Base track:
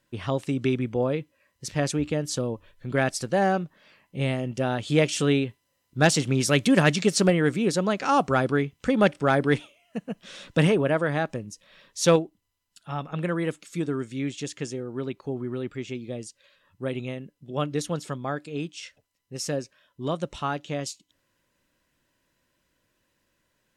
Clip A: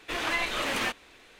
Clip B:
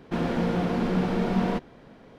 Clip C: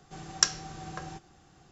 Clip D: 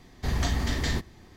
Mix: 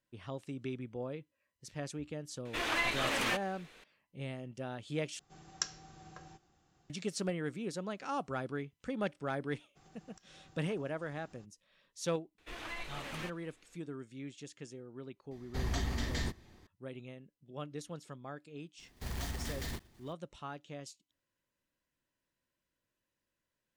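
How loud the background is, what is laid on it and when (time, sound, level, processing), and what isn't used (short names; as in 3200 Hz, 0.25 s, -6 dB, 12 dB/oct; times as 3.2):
base track -15.5 dB
2.45 add A -3.5 dB
5.19 replace with C -12.5 dB
9.75 add C -4 dB, fades 0.02 s + compressor 16:1, threshold -54 dBFS
12.38 add A -15 dB + low shelf 110 Hz +11.5 dB
15.31 add D -8 dB
18.78 add D -13 dB, fades 0.02 s + block floating point 3-bit
not used: B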